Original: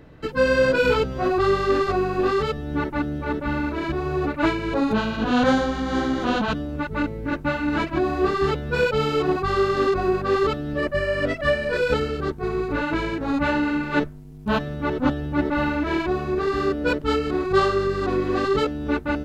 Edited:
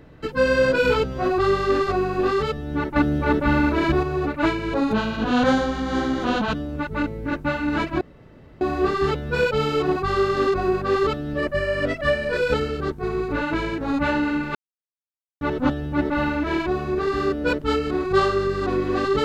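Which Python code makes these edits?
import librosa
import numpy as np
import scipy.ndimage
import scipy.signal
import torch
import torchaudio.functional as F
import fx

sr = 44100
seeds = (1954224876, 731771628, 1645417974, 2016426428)

y = fx.edit(x, sr, fx.clip_gain(start_s=2.96, length_s=1.07, db=6.0),
    fx.insert_room_tone(at_s=8.01, length_s=0.6),
    fx.silence(start_s=13.95, length_s=0.86), tone=tone)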